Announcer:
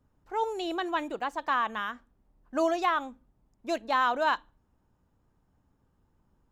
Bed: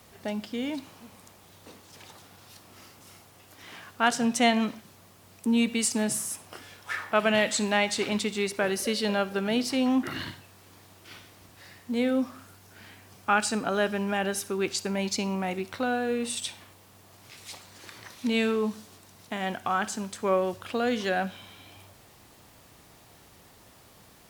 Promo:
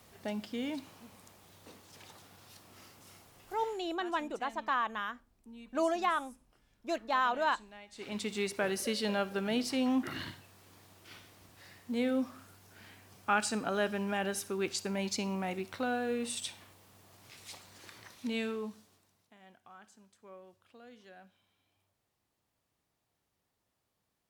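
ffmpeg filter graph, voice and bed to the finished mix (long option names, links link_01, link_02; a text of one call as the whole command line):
ffmpeg -i stem1.wav -i stem2.wav -filter_complex "[0:a]adelay=3200,volume=-4dB[link_01];[1:a]volume=17dB,afade=type=out:start_time=3.58:duration=0.22:silence=0.0749894,afade=type=in:start_time=7.92:duration=0.43:silence=0.0794328,afade=type=out:start_time=17.75:duration=1.58:silence=0.0794328[link_02];[link_01][link_02]amix=inputs=2:normalize=0" out.wav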